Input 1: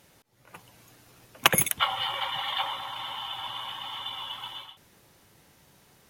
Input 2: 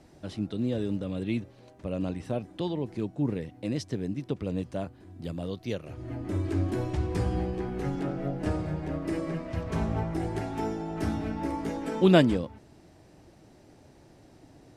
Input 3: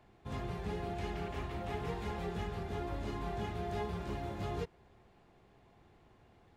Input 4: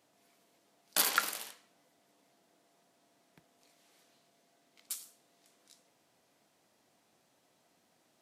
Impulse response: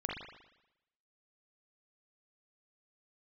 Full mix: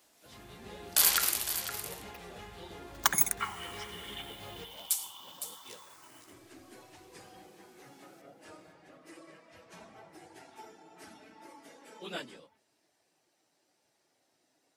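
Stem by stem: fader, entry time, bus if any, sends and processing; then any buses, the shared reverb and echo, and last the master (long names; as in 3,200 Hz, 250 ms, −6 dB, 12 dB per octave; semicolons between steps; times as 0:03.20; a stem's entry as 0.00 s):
0:03.19 −5 dB → 0:03.91 −14.5 dB, 1.60 s, no send, no echo send, hold until the input has moved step −40 dBFS; frequency shifter mixed with the dry sound +0.38 Hz
−14.5 dB, 0.00 s, no send, no echo send, random phases in long frames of 50 ms; high-pass filter 510 Hz 6 dB per octave
−15.5 dB, 0.00 s, send −6.5 dB, no echo send, automatic gain control gain up to 6.5 dB
+2.0 dB, 0.00 s, no send, echo send −10.5 dB, brickwall limiter −18 dBFS, peak gain reduction 7.5 dB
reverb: on, pre-delay 39 ms
echo: single-tap delay 510 ms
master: spectral tilt +2.5 dB per octave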